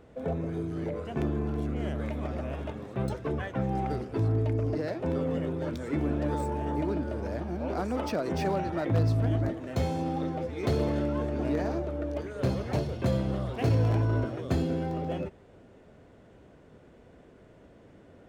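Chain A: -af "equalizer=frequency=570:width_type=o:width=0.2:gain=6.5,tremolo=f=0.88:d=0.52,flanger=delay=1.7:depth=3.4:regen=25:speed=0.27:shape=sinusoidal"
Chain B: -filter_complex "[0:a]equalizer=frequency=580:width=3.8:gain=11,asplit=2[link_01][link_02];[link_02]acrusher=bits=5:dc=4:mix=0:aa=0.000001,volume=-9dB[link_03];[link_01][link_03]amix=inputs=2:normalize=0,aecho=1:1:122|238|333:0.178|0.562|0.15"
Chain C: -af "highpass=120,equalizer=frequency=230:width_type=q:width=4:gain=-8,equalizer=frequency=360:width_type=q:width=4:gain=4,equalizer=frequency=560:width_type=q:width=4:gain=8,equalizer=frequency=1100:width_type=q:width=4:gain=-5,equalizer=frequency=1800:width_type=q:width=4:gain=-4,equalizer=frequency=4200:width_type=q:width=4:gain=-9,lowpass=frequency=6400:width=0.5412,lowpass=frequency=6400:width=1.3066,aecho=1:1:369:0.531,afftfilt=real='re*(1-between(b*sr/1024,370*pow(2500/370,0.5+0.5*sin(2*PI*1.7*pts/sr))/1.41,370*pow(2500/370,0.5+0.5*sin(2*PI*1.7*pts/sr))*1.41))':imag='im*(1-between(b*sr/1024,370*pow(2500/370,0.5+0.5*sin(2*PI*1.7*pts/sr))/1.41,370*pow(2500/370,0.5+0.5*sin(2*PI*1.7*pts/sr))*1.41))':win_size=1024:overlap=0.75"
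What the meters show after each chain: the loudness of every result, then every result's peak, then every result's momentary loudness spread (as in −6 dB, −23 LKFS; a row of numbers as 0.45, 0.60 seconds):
−36.5, −24.0, −30.5 LKFS; −19.5, −9.0, −13.0 dBFS; 8, 7, 6 LU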